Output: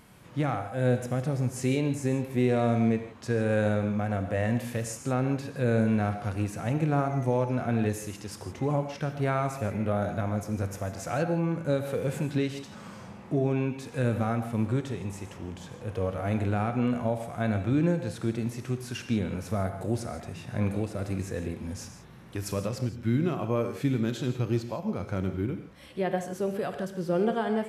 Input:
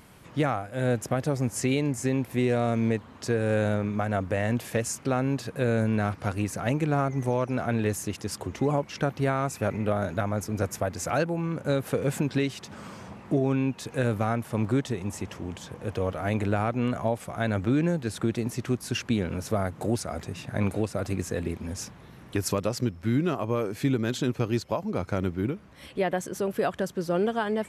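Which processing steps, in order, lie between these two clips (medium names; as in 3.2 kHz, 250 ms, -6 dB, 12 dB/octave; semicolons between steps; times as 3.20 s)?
harmonic-percussive split percussive -8 dB; gated-style reverb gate 190 ms flat, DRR 7.5 dB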